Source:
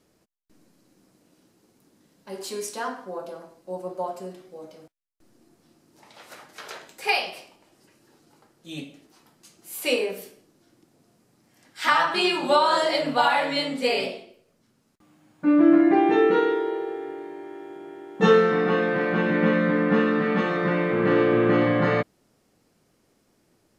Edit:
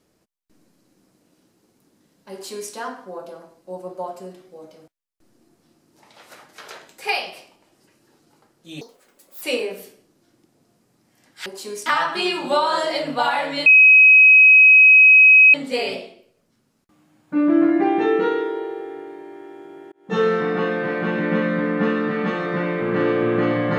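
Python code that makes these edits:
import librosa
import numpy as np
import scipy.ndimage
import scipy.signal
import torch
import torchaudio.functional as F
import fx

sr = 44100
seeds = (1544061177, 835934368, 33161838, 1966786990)

y = fx.edit(x, sr, fx.duplicate(start_s=2.32, length_s=0.4, to_s=11.85),
    fx.speed_span(start_s=8.81, length_s=1.0, speed=1.64),
    fx.insert_tone(at_s=13.65, length_s=1.88, hz=2540.0, db=-6.5),
    fx.fade_in_span(start_s=18.03, length_s=0.41), tone=tone)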